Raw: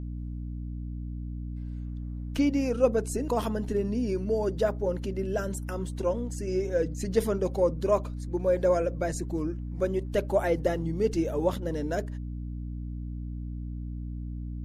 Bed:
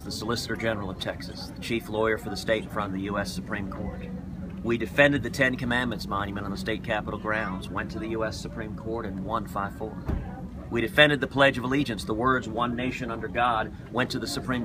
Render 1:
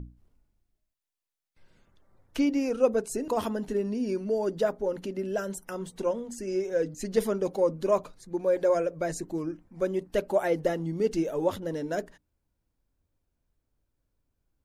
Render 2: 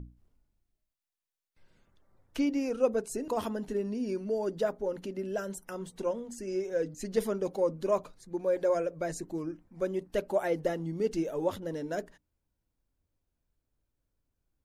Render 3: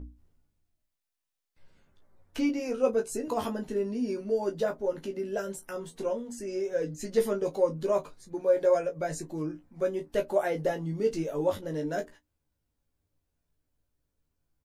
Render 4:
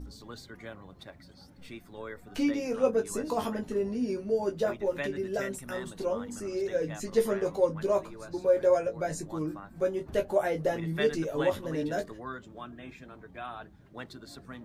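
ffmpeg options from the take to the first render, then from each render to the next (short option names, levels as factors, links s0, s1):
-af "bandreject=f=60:t=h:w=6,bandreject=f=120:t=h:w=6,bandreject=f=180:t=h:w=6,bandreject=f=240:t=h:w=6,bandreject=f=300:t=h:w=6"
-af "volume=0.668"
-filter_complex "[0:a]asplit=2[s0][s1];[s1]adelay=20,volume=0.447[s2];[s0][s2]amix=inputs=2:normalize=0,aecho=1:1:13|31:0.531|0.141"
-filter_complex "[1:a]volume=0.15[s0];[0:a][s0]amix=inputs=2:normalize=0"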